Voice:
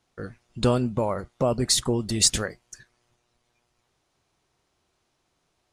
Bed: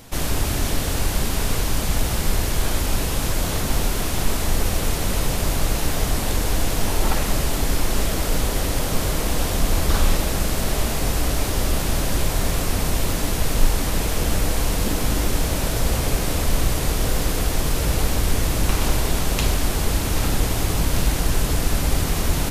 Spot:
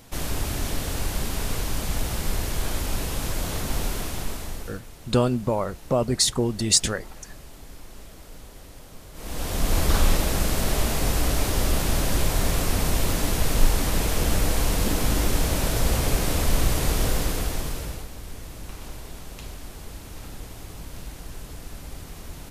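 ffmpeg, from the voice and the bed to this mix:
ffmpeg -i stem1.wav -i stem2.wav -filter_complex "[0:a]adelay=4500,volume=1dB[link_01];[1:a]volume=15.5dB,afade=type=out:start_time=3.92:duration=0.89:silence=0.141254,afade=type=in:start_time=9.13:duration=0.66:silence=0.0891251,afade=type=out:start_time=17.01:duration=1.06:silence=0.149624[link_02];[link_01][link_02]amix=inputs=2:normalize=0" out.wav

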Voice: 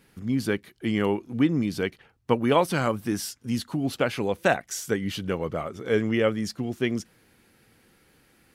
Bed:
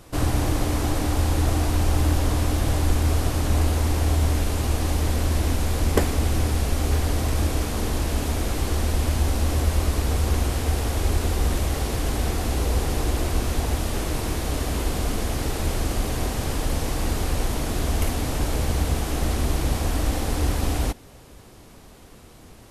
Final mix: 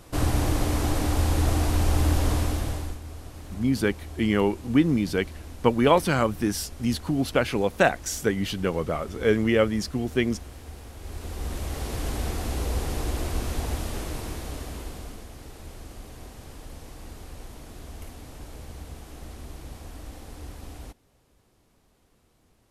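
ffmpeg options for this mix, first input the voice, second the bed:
ffmpeg -i stem1.wav -i stem2.wav -filter_complex "[0:a]adelay=3350,volume=2dB[link_01];[1:a]volume=12dB,afade=type=out:start_time=2.32:duration=0.67:silence=0.141254,afade=type=in:start_time=10.99:duration=1.04:silence=0.211349,afade=type=out:start_time=13.73:duration=1.55:silence=0.237137[link_02];[link_01][link_02]amix=inputs=2:normalize=0" out.wav

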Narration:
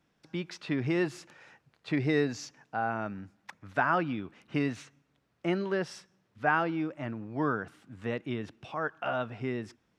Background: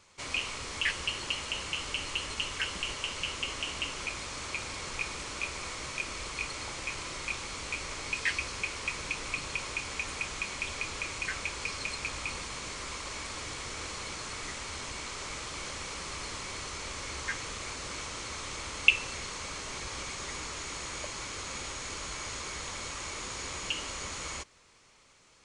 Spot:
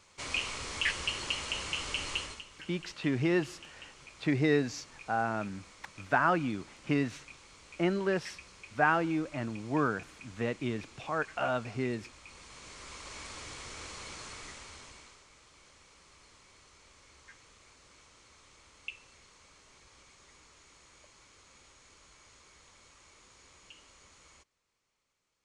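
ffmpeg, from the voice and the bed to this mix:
ffmpeg -i stem1.wav -i stem2.wav -filter_complex "[0:a]adelay=2350,volume=0.5dB[link_01];[1:a]volume=10.5dB,afade=type=out:start_time=2.15:duration=0.28:silence=0.158489,afade=type=in:start_time=12.25:duration=0.98:silence=0.281838,afade=type=out:start_time=14.23:duration=1.01:silence=0.177828[link_02];[link_01][link_02]amix=inputs=2:normalize=0" out.wav

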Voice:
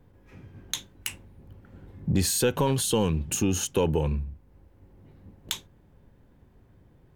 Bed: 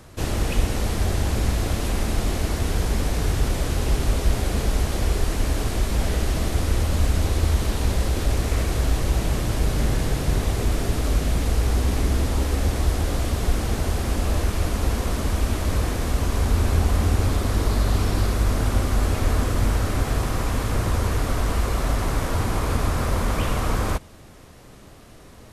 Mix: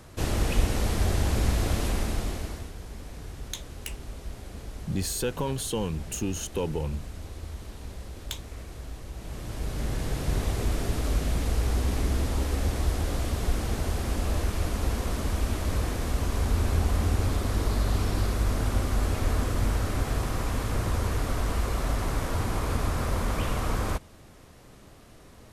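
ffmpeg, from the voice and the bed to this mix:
ffmpeg -i stem1.wav -i stem2.wav -filter_complex "[0:a]adelay=2800,volume=-5.5dB[link_01];[1:a]volume=10.5dB,afade=type=out:start_time=1.8:duration=0.92:silence=0.16788,afade=type=in:start_time=9.15:duration=1.25:silence=0.223872[link_02];[link_01][link_02]amix=inputs=2:normalize=0" out.wav

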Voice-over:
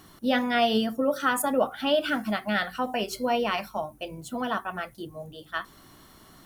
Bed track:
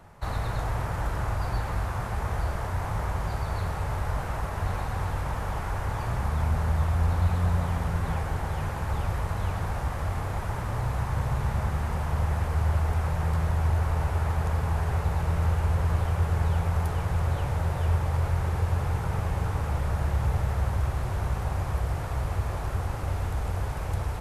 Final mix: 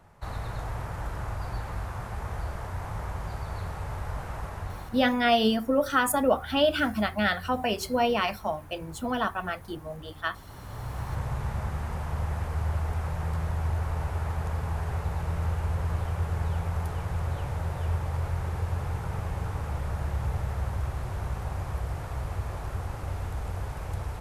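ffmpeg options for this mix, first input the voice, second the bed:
ffmpeg -i stem1.wav -i stem2.wav -filter_complex "[0:a]adelay=4700,volume=1dB[link_01];[1:a]volume=9dB,afade=type=out:start_time=4.48:duration=0.65:silence=0.223872,afade=type=in:start_time=10.47:duration=0.68:silence=0.199526[link_02];[link_01][link_02]amix=inputs=2:normalize=0" out.wav

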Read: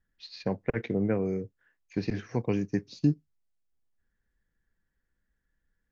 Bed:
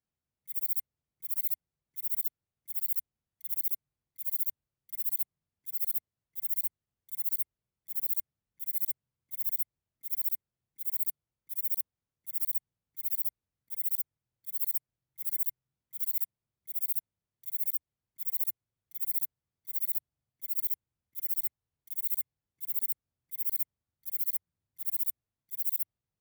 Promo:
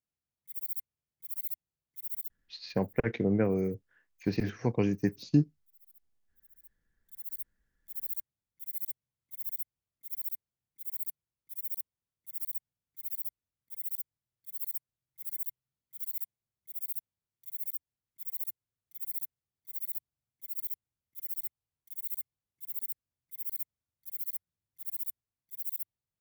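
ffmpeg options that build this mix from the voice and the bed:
ffmpeg -i stem1.wav -i stem2.wav -filter_complex "[0:a]adelay=2300,volume=0.5dB[link_01];[1:a]volume=18dB,afade=type=out:start_time=2.13:duration=0.46:silence=0.0668344,afade=type=in:start_time=6.6:duration=1.12:silence=0.0668344[link_02];[link_01][link_02]amix=inputs=2:normalize=0" out.wav

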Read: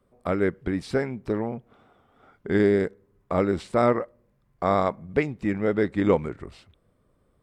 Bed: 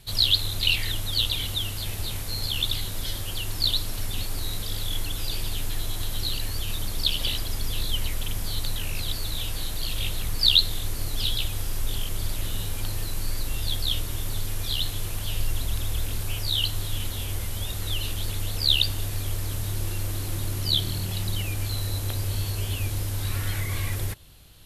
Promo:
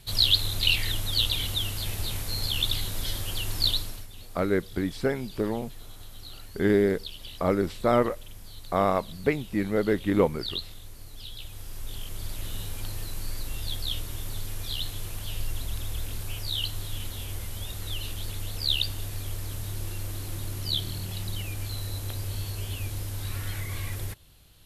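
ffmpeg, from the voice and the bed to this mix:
ffmpeg -i stem1.wav -i stem2.wav -filter_complex "[0:a]adelay=4100,volume=-1.5dB[link_01];[1:a]volume=10dB,afade=type=out:start_time=3.67:duration=0.4:silence=0.177828,afade=type=in:start_time=11.28:duration=1.26:silence=0.298538[link_02];[link_01][link_02]amix=inputs=2:normalize=0" out.wav

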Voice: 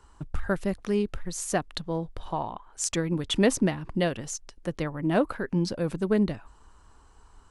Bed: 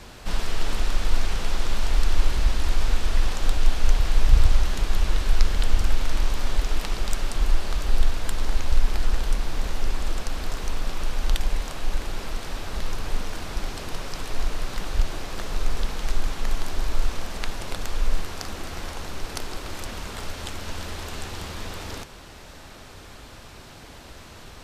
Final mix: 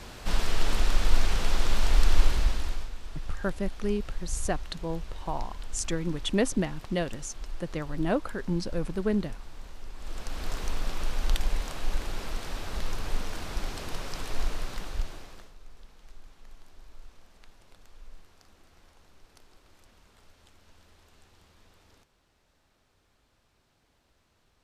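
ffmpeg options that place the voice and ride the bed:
ffmpeg -i stem1.wav -i stem2.wav -filter_complex "[0:a]adelay=2950,volume=-3.5dB[link_01];[1:a]volume=13.5dB,afade=type=out:start_time=2.19:duration=0.71:silence=0.141254,afade=type=in:start_time=9.95:duration=0.58:silence=0.199526,afade=type=out:start_time=14.44:duration=1.1:silence=0.0794328[link_02];[link_01][link_02]amix=inputs=2:normalize=0" out.wav

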